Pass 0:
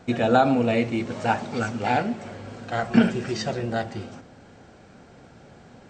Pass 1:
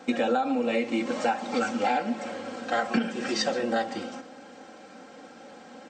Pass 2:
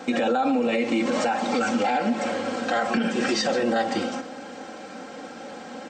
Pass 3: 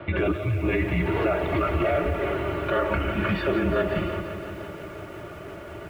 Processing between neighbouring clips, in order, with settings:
high-pass filter 280 Hz 12 dB per octave; comb filter 3.8 ms, depth 77%; downward compressor 16 to 1, threshold −24 dBFS, peak gain reduction 14 dB; level +2.5 dB
brickwall limiter −23.5 dBFS, peak gain reduction 9.5 dB; level +8.5 dB
gain on a spectral selection 0:00.32–0:00.62, 310–1,900 Hz −13 dB; single-sideband voice off tune −160 Hz 240–3,200 Hz; feedback echo at a low word length 171 ms, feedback 80%, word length 8 bits, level −11.5 dB

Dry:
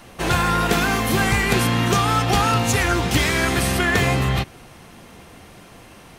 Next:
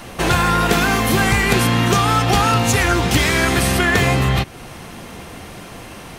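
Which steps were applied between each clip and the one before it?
downward compressor 1.5 to 1, threshold −32 dBFS, peak gain reduction 6.5 dB
level +9 dB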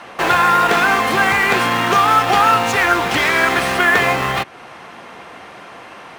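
resonant band-pass 1,200 Hz, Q 0.74
in parallel at −11 dB: bit reduction 4 bits
on the sum: level +3.5 dB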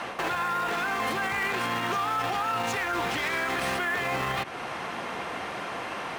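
reversed playback
downward compressor, threshold −21 dBFS, peak gain reduction 11.5 dB
reversed playback
brickwall limiter −23 dBFS, peak gain reduction 12 dB
level +2.5 dB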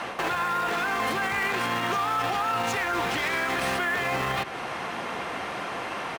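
far-end echo of a speakerphone 180 ms, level −12 dB
level +1.5 dB

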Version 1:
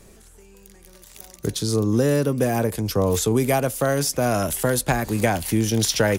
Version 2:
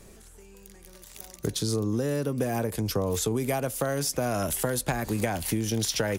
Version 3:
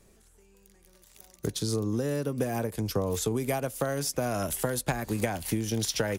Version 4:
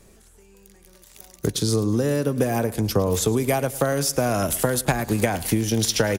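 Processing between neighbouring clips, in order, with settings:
downward compressor, threshold −22 dBFS, peak gain reduction 8 dB; level −1.5 dB
expander for the loud parts 1.5 to 1, over −42 dBFS
repeating echo 107 ms, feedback 46%, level −18 dB; level +7.5 dB

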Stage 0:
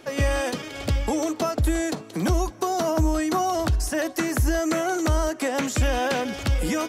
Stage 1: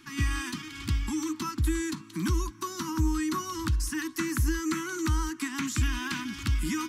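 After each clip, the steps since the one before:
elliptic band-stop filter 330–1,000 Hz, stop band 50 dB
level −4 dB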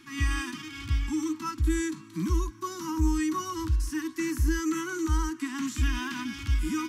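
harmonic and percussive parts rebalanced percussive −15 dB
level +2 dB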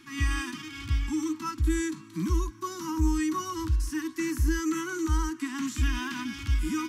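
no processing that can be heard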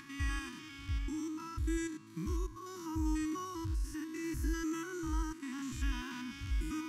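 spectrum averaged block by block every 100 ms
upward compression, threshold −40 dBFS
level −7.5 dB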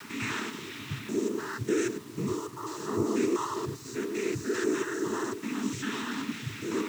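cochlear-implant simulation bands 12
bit-depth reduction 10 bits, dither none
level +9 dB

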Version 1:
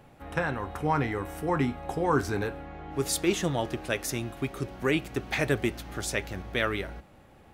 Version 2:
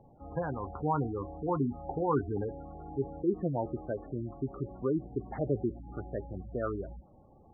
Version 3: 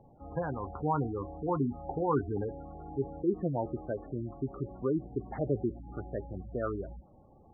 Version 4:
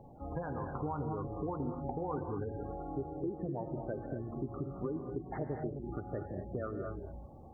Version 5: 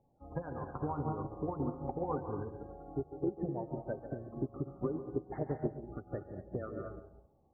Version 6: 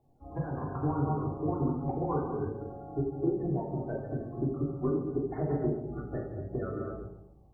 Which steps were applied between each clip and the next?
inverse Chebyshev low-pass filter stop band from 4,400 Hz, stop band 60 dB; gate on every frequency bin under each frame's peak −15 dB strong; level −3 dB
no processing that can be heard
downward compressor, threshold −40 dBFS, peak gain reduction 16 dB; reverb whose tail is shaped and stops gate 270 ms rising, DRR 3.5 dB; level +4 dB
feedback echo with a band-pass in the loop 140 ms, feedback 50%, band-pass 570 Hz, level −5 dB; expander for the loud parts 2.5 to 1, over −48 dBFS; level +4.5 dB
rectangular room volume 930 cubic metres, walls furnished, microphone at 3.3 metres

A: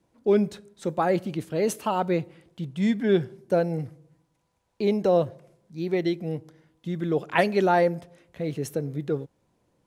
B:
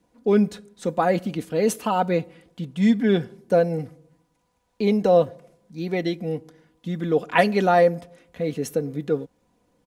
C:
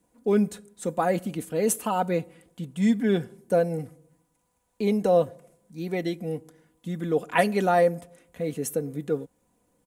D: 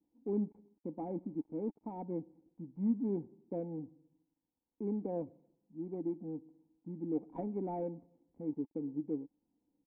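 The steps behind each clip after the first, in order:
comb filter 4.1 ms, depth 48%; level +2.5 dB
high shelf with overshoot 6,500 Hz +8 dB, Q 1.5; level −3.5 dB
gap after every zero crossing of 0.23 ms; formant resonators in series u; level −2 dB

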